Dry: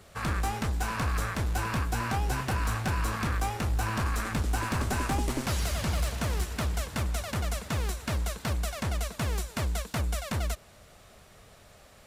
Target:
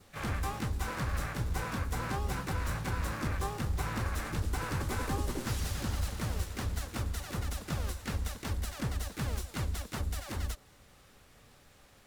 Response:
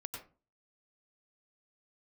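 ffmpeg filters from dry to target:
-filter_complex "[0:a]adynamicequalizer=threshold=0.00158:dfrequency=2300:dqfactor=3.6:tfrequency=2300:tqfactor=3.6:attack=5:release=100:ratio=0.375:range=4:mode=cutabove:tftype=bell,asuperstop=centerf=660:order=12:qfactor=4.4,asplit=4[s0][s1][s2][s3];[s1]asetrate=22050,aresample=44100,atempo=2,volume=0.562[s4];[s2]asetrate=58866,aresample=44100,atempo=0.749154,volume=0.562[s5];[s3]asetrate=66075,aresample=44100,atempo=0.66742,volume=0.447[s6];[s0][s4][s5][s6]amix=inputs=4:normalize=0,volume=0.447"

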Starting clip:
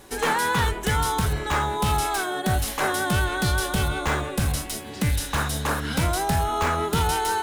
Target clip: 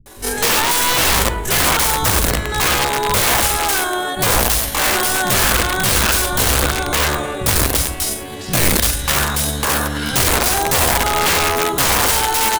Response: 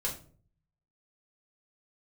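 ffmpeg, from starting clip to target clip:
-filter_complex "[0:a]highshelf=f=6900:g=7.5,atempo=0.59,asplit=2[s0][s1];[s1]adelay=105,lowpass=f=800:p=1,volume=0.501,asplit=2[s2][s3];[s3]adelay=105,lowpass=f=800:p=1,volume=0.52,asplit=2[s4][s5];[s5]adelay=105,lowpass=f=800:p=1,volume=0.52,asplit=2[s6][s7];[s7]adelay=105,lowpass=f=800:p=1,volume=0.52,asplit=2[s8][s9];[s9]adelay=105,lowpass=f=800:p=1,volume=0.52,asplit=2[s10][s11];[s11]adelay=105,lowpass=f=800:p=1,volume=0.52[s12];[s2][s4][s6][s8][s10][s12]amix=inputs=6:normalize=0[s13];[s0][s13]amix=inputs=2:normalize=0,aeval=exprs='(mod(7.08*val(0)+1,2)-1)/7.08':c=same,acrossover=split=180[s14][s15];[s15]adelay=60[s16];[s14][s16]amix=inputs=2:normalize=0,asplit=2[s17][s18];[1:a]atrim=start_sample=2205[s19];[s18][s19]afir=irnorm=-1:irlink=0,volume=0.133[s20];[s17][s20]amix=inputs=2:normalize=0,volume=2.11"

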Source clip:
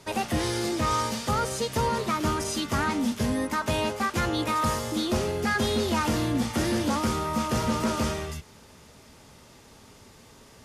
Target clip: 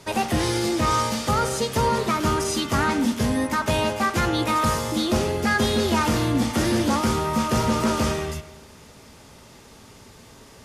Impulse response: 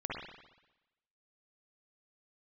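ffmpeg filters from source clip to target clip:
-filter_complex "[0:a]asplit=2[s0][s1];[1:a]atrim=start_sample=2205,adelay=18[s2];[s1][s2]afir=irnorm=-1:irlink=0,volume=0.211[s3];[s0][s3]amix=inputs=2:normalize=0,volume=1.58"

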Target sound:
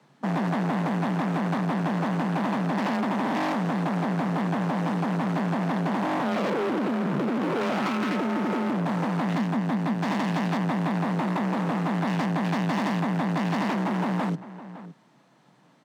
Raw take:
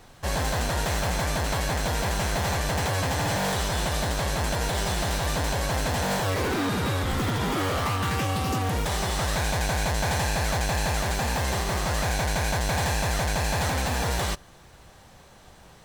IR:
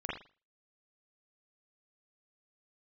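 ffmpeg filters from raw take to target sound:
-filter_complex "[0:a]aemphasis=mode=reproduction:type=50kf,afwtdn=0.0316,asoftclip=type=hard:threshold=0.0335,asettb=1/sr,asplit=3[s0][s1][s2];[s0]atrim=end=9.344[s3];[s1]atrim=start=9.34:end=9.93,asetpts=PTS-STARTPTS,afade=t=in:d=0.004:c=qsin,afade=t=out:st=0.586:d=0.004:c=qsin,equalizer=f=99:w=1.5:g=8[s4];[s2]atrim=start=9.926[s5];[s3][s4]acrossfade=d=0.004:c1=hsin:c2=qsin[s6];[s6][s5]acrossfade=d=0.004:c1=qsin:c2=hsin,asplit=2[s7][s8];[s8]adelay=559.8,volume=0.126,highshelf=f=4000:g=-12.6[s9];[s7][s9]amix=inputs=2:normalize=0,acompressor=threshold=0.02:ratio=3,afreqshift=120,volume=2.51"

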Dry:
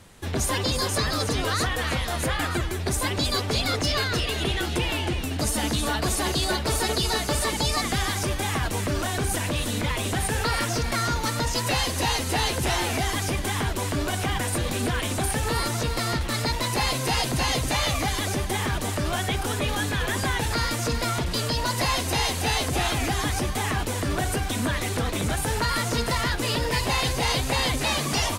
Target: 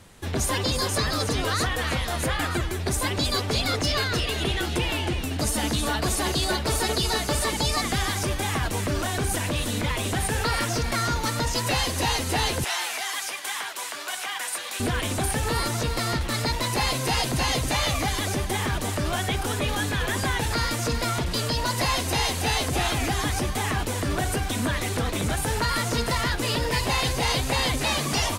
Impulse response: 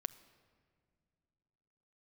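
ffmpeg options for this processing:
-filter_complex "[0:a]asettb=1/sr,asplit=3[s0][s1][s2];[s0]atrim=end=12.644[s3];[s1]atrim=start=12.64:end=14.8,asetpts=PTS-STARTPTS,afade=t=in:d=0.004:c=qsin,afade=t=out:st=2.156:d=0.004:c=qsin,highpass=1000[s4];[s2]atrim=start=14.796[s5];[s3][s4]acrossfade=d=0.004:c1=hsin:c2=qsin[s6];[s6][s5]acrossfade=d=0.004:c1=qsin:c2=hsin"

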